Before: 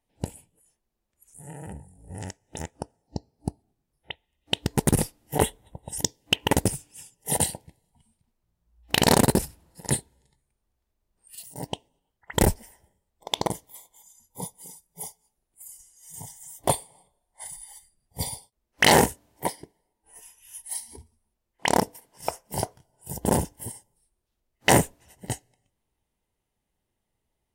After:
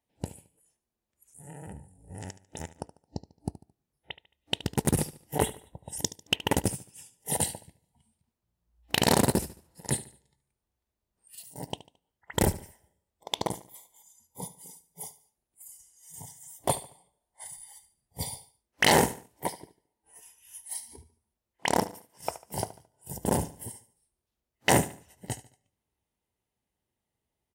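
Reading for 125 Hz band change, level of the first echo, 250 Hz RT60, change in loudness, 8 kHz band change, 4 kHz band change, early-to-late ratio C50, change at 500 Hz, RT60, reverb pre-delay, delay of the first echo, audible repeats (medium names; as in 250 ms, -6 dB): -4.0 dB, -16.0 dB, no reverb, -4.0 dB, -4.0 dB, -4.0 dB, no reverb, -4.0 dB, no reverb, no reverb, 73 ms, 3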